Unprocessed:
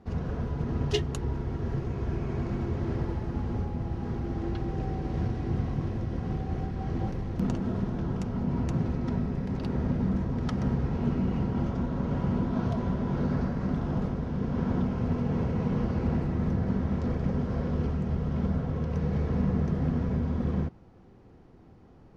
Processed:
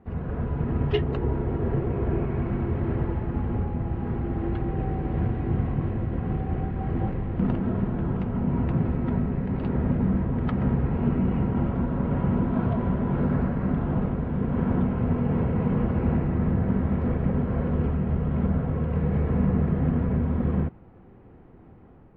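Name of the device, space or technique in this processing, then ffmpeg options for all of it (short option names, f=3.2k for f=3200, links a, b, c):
action camera in a waterproof case: -filter_complex "[0:a]asettb=1/sr,asplit=3[a][b][c];[a]atrim=end=1.024[d];[b]atrim=start=1.02:end=2.25,asetpts=PTS-STARTPTS,afade=t=in:d=0.004:c=qsin,afade=t=out:st=1.226:d=0.004:c=qsin,equalizer=f=470:w=0.8:g=5.5[e];[c]atrim=start=2.246[f];[d][e]acrossfade=d=0.004:c1=hsin:c2=qsin[g];[g][f]acrossfade=d=0.004:c1=qsin:c2=hsin,lowpass=f=2.6k:w=0.5412,lowpass=f=2.6k:w=1.3066,dynaudnorm=f=130:g=5:m=4dB" -ar 32000 -c:a aac -b:a 48k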